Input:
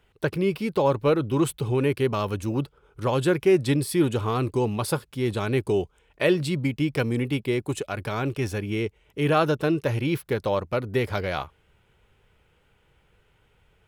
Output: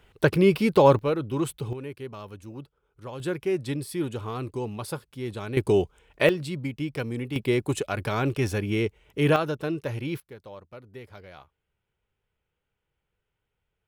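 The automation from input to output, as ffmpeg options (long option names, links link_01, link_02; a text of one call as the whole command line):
ffmpeg -i in.wav -af "asetnsamples=nb_out_samples=441:pad=0,asendcmd='0.99 volume volume -4.5dB;1.73 volume volume -14dB;3.2 volume volume -7.5dB;5.57 volume volume 2.5dB;6.29 volume volume -6dB;7.36 volume volume 1.5dB;9.36 volume volume -6dB;10.2 volume volume -18.5dB',volume=5dB" out.wav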